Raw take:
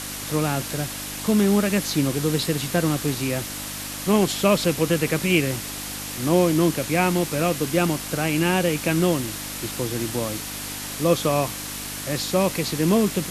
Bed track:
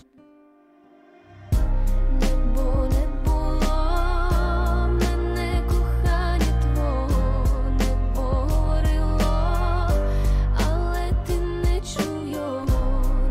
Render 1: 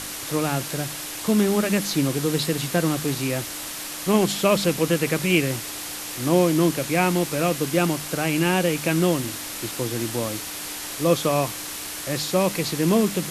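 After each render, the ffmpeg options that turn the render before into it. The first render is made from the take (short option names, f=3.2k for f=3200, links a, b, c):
-af "bandreject=f=50:t=h:w=4,bandreject=f=100:t=h:w=4,bandreject=f=150:t=h:w=4,bandreject=f=200:t=h:w=4,bandreject=f=250:t=h:w=4"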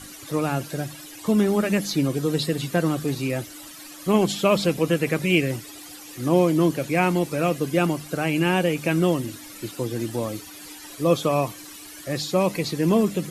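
-af "afftdn=nr=14:nf=-33"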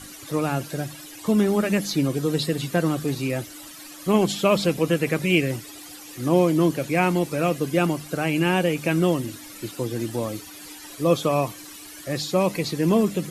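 -af anull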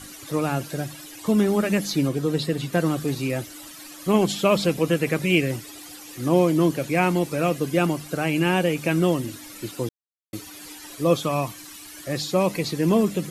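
-filter_complex "[0:a]asettb=1/sr,asplit=3[a][b][c];[a]atrim=end=2.094[d];[b]atrim=start=2.09:end=2.73,asetpts=PTS-STARTPTS,afade=t=in:d=0.004:c=qsin,afade=t=out:st=0.636:d=0.004:c=qsin,highshelf=f=4.1k:g=-5.5[e];[c]atrim=start=2.726[f];[d][e]acrossfade=d=0.004:c1=hsin:c2=qsin[g];[g][f]acrossfade=d=0.004:c1=qsin:c2=hsin,asettb=1/sr,asplit=3[h][i][j];[h]atrim=end=11.204[k];[i]atrim=start=11.2:end=11.94,asetpts=PTS-STARTPTS,afade=t=in:d=0.004:c=qsin,afade=t=out:st=0.736:d=0.004:c=qsin,equalizer=f=460:w=1.4:g=-6[l];[j]atrim=start=11.936[m];[k][l]acrossfade=d=0.004:c1=hsin:c2=qsin[n];[n][m]acrossfade=d=0.004:c1=qsin:c2=hsin,asplit=3[o][p][q];[o]atrim=end=9.89,asetpts=PTS-STARTPTS,afade=t=out:st=9.886:d=0.004:c=hsin[r];[p]atrim=start=9.89:end=10.33,asetpts=PTS-STARTPTS,volume=0[s];[q]atrim=start=10.33,asetpts=PTS-STARTPTS,afade=t=in:d=0.004:c=hsin[t];[r][s][t]concat=n=3:v=0:a=1"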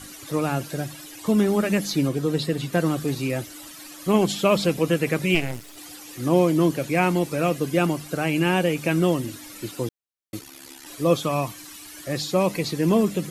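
-filter_complex "[0:a]asplit=3[a][b][c];[a]afade=t=out:st=5.34:d=0.02[d];[b]aeval=exprs='max(val(0),0)':c=same,afade=t=in:st=5.34:d=0.02,afade=t=out:st=5.76:d=0.02[e];[c]afade=t=in:st=5.76:d=0.02[f];[d][e][f]amix=inputs=3:normalize=0,asplit=3[g][h][i];[g]afade=t=out:st=10.39:d=0.02[j];[h]aeval=exprs='val(0)*sin(2*PI*35*n/s)':c=same,afade=t=in:st=10.39:d=0.02,afade=t=out:st=10.85:d=0.02[k];[i]afade=t=in:st=10.85:d=0.02[l];[j][k][l]amix=inputs=3:normalize=0"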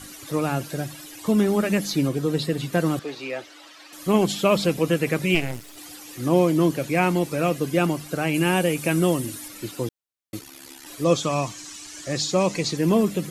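-filter_complex "[0:a]asettb=1/sr,asplit=3[a][b][c];[a]atrim=end=2.994[d];[b]atrim=start=2.99:end=3.93,asetpts=PTS-STARTPTS,afade=t=in:d=0.004:c=qsin,afade=t=out:st=0.936:d=0.004:c=qsin,acrossover=split=360 5400:gain=0.0794 1 0.0891[e][f][g];[e][f][g]amix=inputs=3:normalize=0[h];[c]atrim=start=3.926[i];[d][h]acrossfade=d=0.004:c1=hsin:c2=qsin[j];[j][i]acrossfade=d=0.004:c1=qsin:c2=hsin,asettb=1/sr,asplit=3[k][l][m];[k]atrim=end=8.344[n];[l]atrim=start=8.34:end=9.48,asetpts=PTS-STARTPTS,afade=t=in:d=0.004:c=qsin,afade=t=out:st=1.136:d=0.004:c=qsin,equalizer=f=10k:w=1.2:g=9[o];[m]atrim=start=9.476[p];[n][o]acrossfade=d=0.004:c1=hsin:c2=qsin[q];[q][p]acrossfade=d=0.004:c1=qsin:c2=hsin,asettb=1/sr,asplit=3[r][s][t];[r]atrim=end=11.044[u];[s]atrim=start=11.04:end=12.77,asetpts=PTS-STARTPTS,afade=t=in:d=0.004:c=qsin,afade=t=out:st=1.726:d=0.004:c=qsin,lowpass=f=6.9k:t=q:w=2.3[v];[t]atrim=start=12.766[w];[u][v]acrossfade=d=0.004:c1=hsin:c2=qsin[x];[x][w]acrossfade=d=0.004:c1=qsin:c2=hsin"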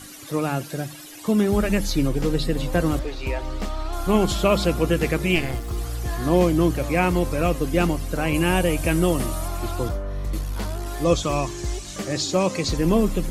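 -filter_complex "[1:a]volume=-7dB[a];[0:a][a]amix=inputs=2:normalize=0"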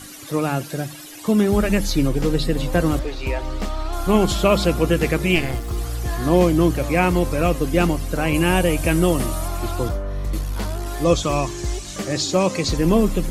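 -af "volume=2.5dB,alimiter=limit=-3dB:level=0:latency=1"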